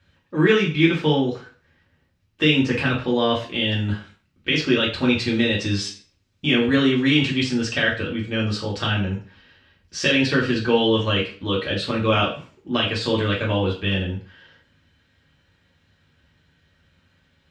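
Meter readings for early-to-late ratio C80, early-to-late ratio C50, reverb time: 12.5 dB, 7.5 dB, 0.40 s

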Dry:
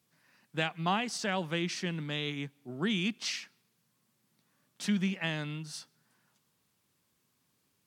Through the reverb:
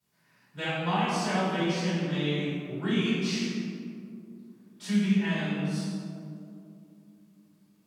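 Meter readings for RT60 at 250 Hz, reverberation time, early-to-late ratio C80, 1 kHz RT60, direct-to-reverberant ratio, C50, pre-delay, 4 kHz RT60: 3.8 s, 2.5 s, -0.5 dB, 2.2 s, -14.5 dB, -3.0 dB, 3 ms, 1.1 s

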